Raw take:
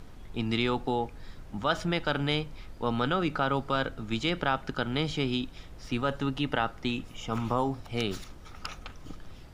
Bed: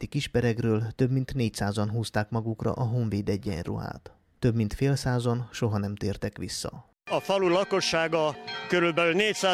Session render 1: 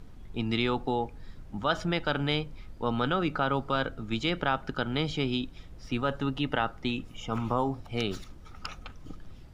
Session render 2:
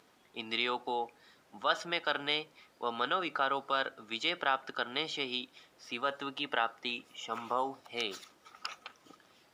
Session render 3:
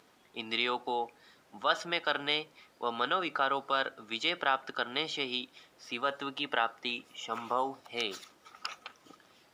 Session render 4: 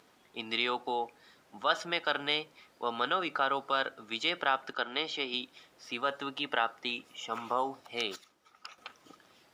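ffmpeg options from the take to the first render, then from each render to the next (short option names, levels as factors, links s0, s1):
-af "afftdn=nr=6:nf=-47"
-af "highpass=540,equalizer=f=700:w=0.58:g=-2"
-af "volume=1.19"
-filter_complex "[0:a]asettb=1/sr,asplit=3[s0][s1][s2];[s0]atrim=end=4.734[s3];[s1]atrim=start=4.73:end=5.34,asetpts=PTS-STARTPTS,afade=t=in:d=0.004:c=qsin,afade=t=out:st=0.606:d=0.004:c=qsin,highpass=210,lowpass=6300[s4];[s2]atrim=start=5.336[s5];[s3][s4]acrossfade=d=0.004:c1=hsin:c2=qsin[s6];[s6][s5]acrossfade=d=0.004:c1=qsin:c2=hsin,asplit=3[s7][s8][s9];[s7]atrim=end=8.162[s10];[s8]atrim=start=8.158:end=8.782,asetpts=PTS-STARTPTS,volume=0.376[s11];[s9]atrim=start=8.778[s12];[s10][s11]acrossfade=d=0.004:c1=hsin:c2=hsin[s13];[s13][s12]acrossfade=d=0.004:c1=hsin:c2=hsin"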